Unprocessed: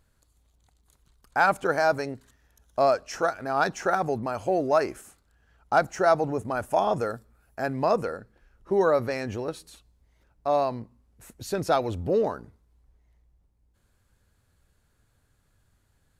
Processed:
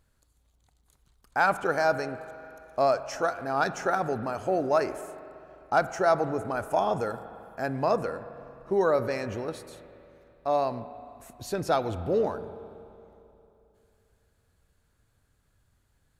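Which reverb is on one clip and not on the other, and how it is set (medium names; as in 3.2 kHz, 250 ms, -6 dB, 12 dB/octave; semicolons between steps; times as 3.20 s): spring tank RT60 2.9 s, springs 37/44 ms, chirp 75 ms, DRR 12 dB; trim -2 dB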